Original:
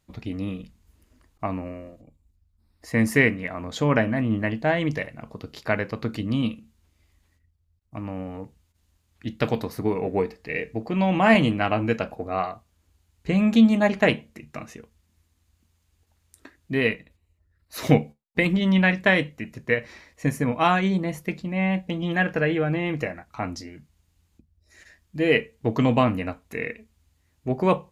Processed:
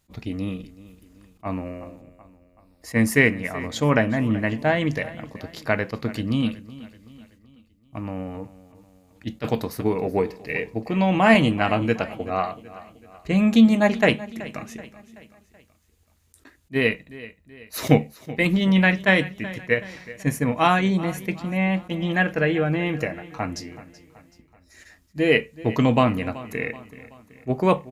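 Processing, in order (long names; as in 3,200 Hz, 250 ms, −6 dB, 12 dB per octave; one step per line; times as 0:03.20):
high-shelf EQ 7,300 Hz +6 dB
repeating echo 379 ms, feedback 48%, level −18 dB
level that may rise only so fast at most 530 dB per second
level +1.5 dB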